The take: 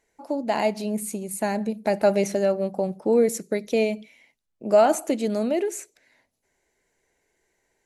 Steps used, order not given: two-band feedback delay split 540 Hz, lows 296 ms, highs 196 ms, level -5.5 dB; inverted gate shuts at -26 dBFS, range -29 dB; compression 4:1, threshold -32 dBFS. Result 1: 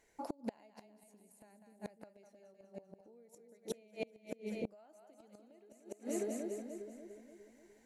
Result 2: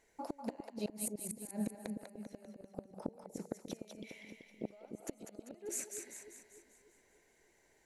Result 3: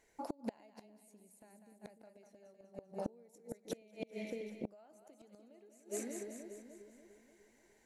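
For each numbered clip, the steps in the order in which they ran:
two-band feedback delay > compression > inverted gate; compression > inverted gate > two-band feedback delay; compression > two-band feedback delay > inverted gate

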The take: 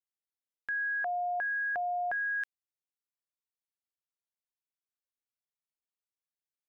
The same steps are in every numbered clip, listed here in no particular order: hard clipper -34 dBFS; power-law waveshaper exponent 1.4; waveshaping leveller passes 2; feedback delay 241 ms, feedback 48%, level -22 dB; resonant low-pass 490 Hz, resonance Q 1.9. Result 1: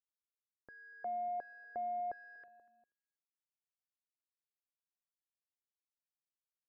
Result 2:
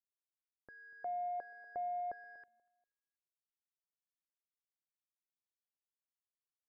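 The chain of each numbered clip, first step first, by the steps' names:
feedback delay > hard clipper > power-law waveshaper > waveshaping leveller > resonant low-pass; hard clipper > waveshaping leveller > feedback delay > power-law waveshaper > resonant low-pass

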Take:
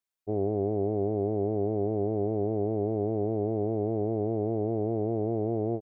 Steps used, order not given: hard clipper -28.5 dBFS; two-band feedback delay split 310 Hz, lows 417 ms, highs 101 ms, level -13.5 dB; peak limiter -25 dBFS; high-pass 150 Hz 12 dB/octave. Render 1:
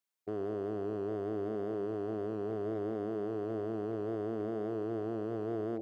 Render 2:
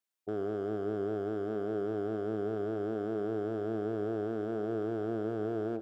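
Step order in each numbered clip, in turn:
two-band feedback delay > peak limiter > hard clipper > high-pass; high-pass > peak limiter > hard clipper > two-band feedback delay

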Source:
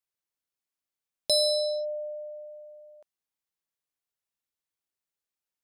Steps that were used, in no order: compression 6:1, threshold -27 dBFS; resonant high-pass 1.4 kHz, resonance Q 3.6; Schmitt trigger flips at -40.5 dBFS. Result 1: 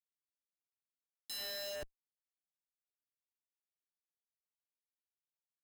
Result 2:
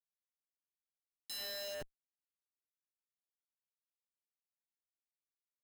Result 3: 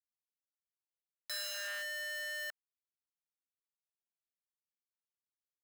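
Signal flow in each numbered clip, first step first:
resonant high-pass > compression > Schmitt trigger; compression > resonant high-pass > Schmitt trigger; compression > Schmitt trigger > resonant high-pass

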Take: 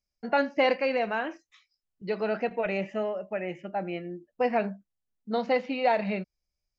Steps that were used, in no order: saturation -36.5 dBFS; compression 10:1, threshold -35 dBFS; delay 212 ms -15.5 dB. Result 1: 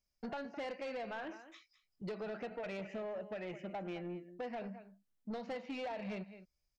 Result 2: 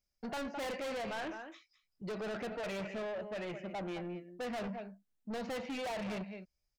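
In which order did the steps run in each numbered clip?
compression > delay > saturation; delay > saturation > compression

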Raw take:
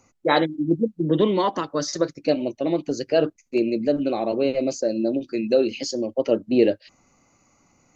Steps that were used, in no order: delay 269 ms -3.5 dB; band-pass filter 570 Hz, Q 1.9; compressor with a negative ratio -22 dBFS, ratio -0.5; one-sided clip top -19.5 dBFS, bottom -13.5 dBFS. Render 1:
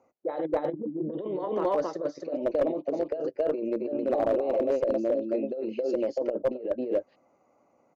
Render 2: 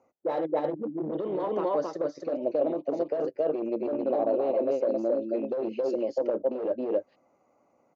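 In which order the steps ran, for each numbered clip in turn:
delay > compressor with a negative ratio > band-pass filter > one-sided clip; delay > one-sided clip > compressor with a negative ratio > band-pass filter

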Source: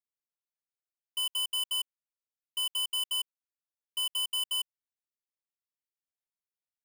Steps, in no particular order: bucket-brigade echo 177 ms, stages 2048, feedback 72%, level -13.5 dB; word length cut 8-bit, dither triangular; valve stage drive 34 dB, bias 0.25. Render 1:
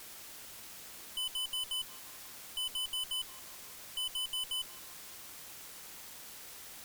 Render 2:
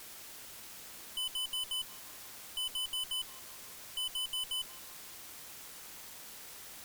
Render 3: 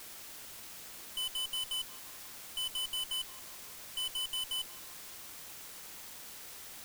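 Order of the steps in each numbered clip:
bucket-brigade echo > word length cut > valve stage; word length cut > bucket-brigade echo > valve stage; bucket-brigade echo > valve stage > word length cut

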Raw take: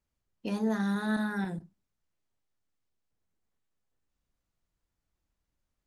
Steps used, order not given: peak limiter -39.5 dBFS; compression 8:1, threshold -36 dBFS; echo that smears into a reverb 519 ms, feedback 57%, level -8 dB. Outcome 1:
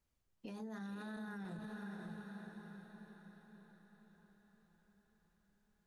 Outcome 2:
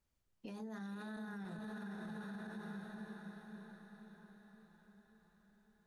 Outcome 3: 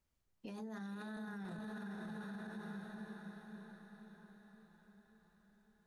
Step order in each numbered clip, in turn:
compression > echo that smears into a reverb > peak limiter; echo that smears into a reverb > compression > peak limiter; echo that smears into a reverb > peak limiter > compression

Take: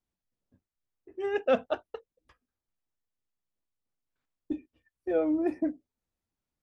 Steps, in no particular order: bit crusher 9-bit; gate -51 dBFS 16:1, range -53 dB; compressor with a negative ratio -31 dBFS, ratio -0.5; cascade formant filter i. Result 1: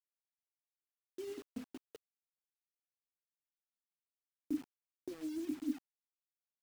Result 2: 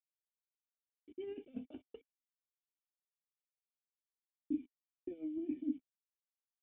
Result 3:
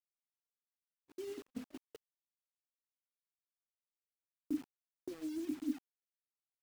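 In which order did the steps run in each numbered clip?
compressor with a negative ratio > cascade formant filter > gate > bit crusher; gate > compressor with a negative ratio > bit crusher > cascade formant filter; compressor with a negative ratio > cascade formant filter > bit crusher > gate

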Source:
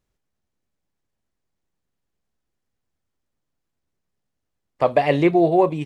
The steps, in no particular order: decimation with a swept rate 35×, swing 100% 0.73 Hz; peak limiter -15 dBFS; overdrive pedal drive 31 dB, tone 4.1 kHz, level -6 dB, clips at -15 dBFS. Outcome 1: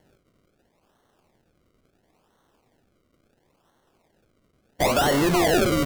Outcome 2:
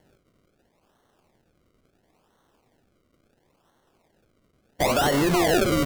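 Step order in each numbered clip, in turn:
peak limiter > overdrive pedal > decimation with a swept rate; overdrive pedal > peak limiter > decimation with a swept rate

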